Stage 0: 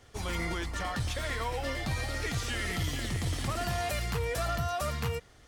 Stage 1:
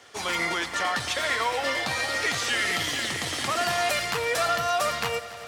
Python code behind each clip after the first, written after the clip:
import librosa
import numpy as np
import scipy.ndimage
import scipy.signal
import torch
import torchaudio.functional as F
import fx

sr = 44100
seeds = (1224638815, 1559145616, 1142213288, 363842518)

y = fx.weighting(x, sr, curve='A')
y = fx.echo_heads(y, sr, ms=94, heads='first and third', feedback_pct=75, wet_db=-18.5)
y = y * 10.0 ** (9.0 / 20.0)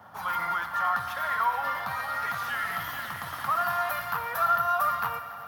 y = fx.dmg_noise_band(x, sr, seeds[0], low_hz=92.0, high_hz=840.0, level_db=-46.0)
y = fx.curve_eq(y, sr, hz=(180.0, 380.0, 970.0, 1400.0, 2200.0, 3300.0, 5200.0, 7900.0, 14000.0), db=(0, -15, 9, 10, -7, -8, -11, -16, 14))
y = fx.echo_thinned(y, sr, ms=61, feedback_pct=71, hz=420.0, wet_db=-14)
y = y * 10.0 ** (-6.5 / 20.0)